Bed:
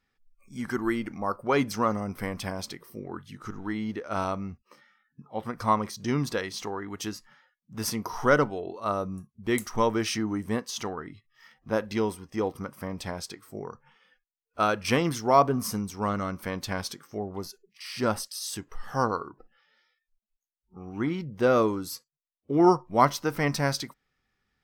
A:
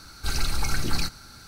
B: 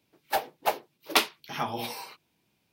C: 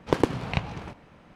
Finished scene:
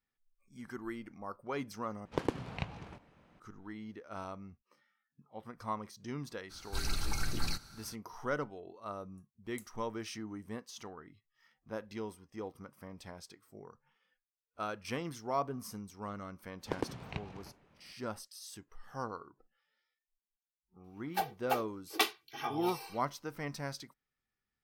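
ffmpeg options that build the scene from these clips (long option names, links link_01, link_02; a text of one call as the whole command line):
ffmpeg -i bed.wav -i cue0.wav -i cue1.wav -i cue2.wav -filter_complex "[3:a]asplit=2[link_01][link_02];[0:a]volume=-14dB[link_03];[2:a]aecho=1:1:2.6:0.92[link_04];[link_03]asplit=2[link_05][link_06];[link_05]atrim=end=2.054[link_07];[link_01]atrim=end=1.35,asetpts=PTS-STARTPTS,volume=-11dB[link_08];[link_06]atrim=start=3.396[link_09];[1:a]atrim=end=1.47,asetpts=PTS-STARTPTS,volume=-9dB,afade=type=in:duration=0.02,afade=type=out:start_time=1.45:duration=0.02,adelay=6490[link_10];[link_02]atrim=end=1.35,asetpts=PTS-STARTPTS,volume=-14dB,afade=type=in:duration=0.004:curve=hsin,afade=type=out:start_time=1.346:duration=0.004:curve=hsin,adelay=16590[link_11];[link_04]atrim=end=2.72,asetpts=PTS-STARTPTS,volume=-10dB,afade=type=in:duration=0.004:curve=hsin,afade=type=out:start_time=2.716:duration=0.004:curve=hsin,adelay=919044S[link_12];[link_07][link_08]acrossfade=duration=0.004:curve1=hsin:curve2=hsin[link_13];[link_13][link_09]acrossfade=duration=0.004:curve1=hsin:curve2=hsin[link_14];[link_14][link_10][link_11][link_12]amix=inputs=4:normalize=0" out.wav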